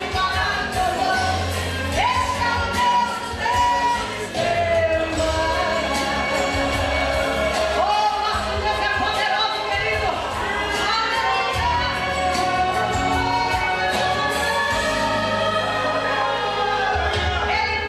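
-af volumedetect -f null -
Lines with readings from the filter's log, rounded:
mean_volume: -21.0 dB
max_volume: -8.7 dB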